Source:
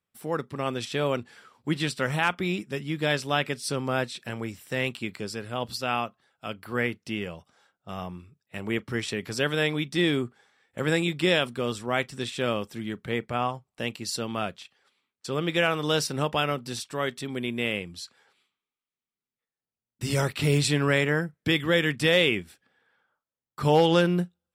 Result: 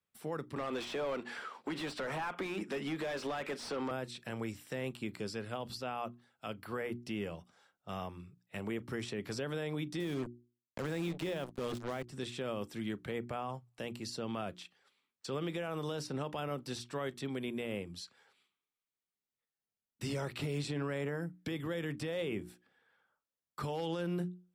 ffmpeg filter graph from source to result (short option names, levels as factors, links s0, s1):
-filter_complex "[0:a]asettb=1/sr,asplit=3[s0][s1][s2];[s0]atrim=end=0.564[s3];[s1]atrim=start=0.56:end=3.91,asetpts=PTS-STARTPTS,afade=t=in:d=0.004:c=qsin,afade=t=out:st=3.346:d=0.004:c=qsin,highpass=f=170:w=0.5412,highpass=f=170:w=1.3066,acompressor=threshold=0.0178:ratio=3:attack=3.2:release=140:knee=1:detection=peak,asplit=2[s4][s5];[s5]highpass=f=720:p=1,volume=14.1,asoftclip=type=tanh:threshold=0.0891[s6];[s4][s6]amix=inputs=2:normalize=0,lowpass=f=2100:p=1,volume=0.501[s7];[s2]atrim=start=3.906[s8];[s3][s7]acrossfade=d=0.004:c1=hsin:c2=qsin[s9];[s9][s8]acrossfade=d=0.004:c1=qsin:c2=hsin,asettb=1/sr,asplit=3[s10][s11][s12];[s10]atrim=end=10.004[s13];[s11]atrim=start=10:end=12.08,asetpts=PTS-STARTPTS,afade=t=in:d=0.004:c=qsin,afade=t=out:st=2.076:d=0.004:c=qsin,lowshelf=f=140:g=6,acrusher=bits=4:mix=0:aa=0.5[s14];[s12]atrim=start=12.076[s15];[s13][s14]acrossfade=d=0.004:c1=hsin:c2=qsin[s16];[s16][s15]acrossfade=d=0.004:c1=qsin:c2=hsin,bandreject=f=60:t=h:w=6,bandreject=f=120:t=h:w=6,bandreject=f=180:t=h:w=6,bandreject=f=240:t=h:w=6,bandreject=f=300:t=h:w=6,bandreject=f=360:t=h:w=6,acrossover=split=140|1200|6800[s17][s18][s19][s20];[s17]acompressor=threshold=0.00708:ratio=4[s21];[s18]acompressor=threshold=0.0501:ratio=4[s22];[s19]acompressor=threshold=0.01:ratio=4[s23];[s20]acompressor=threshold=0.00178:ratio=4[s24];[s21][s22][s23][s24]amix=inputs=4:normalize=0,alimiter=level_in=1.06:limit=0.0631:level=0:latency=1:release=36,volume=0.944,volume=0.631"